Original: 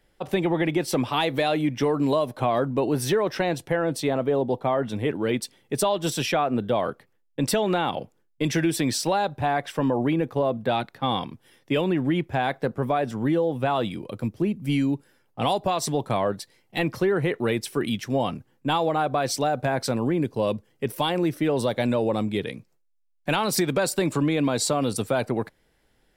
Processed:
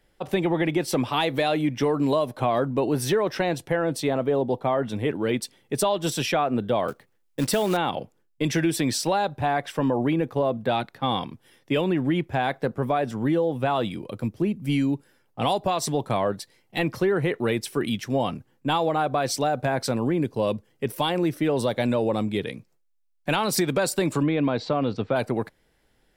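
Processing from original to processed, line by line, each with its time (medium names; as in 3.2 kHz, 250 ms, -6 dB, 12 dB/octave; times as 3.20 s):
6.88–7.77 s: short-mantissa float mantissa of 2-bit
24.23–25.16 s: Bessel low-pass 2.8 kHz, order 6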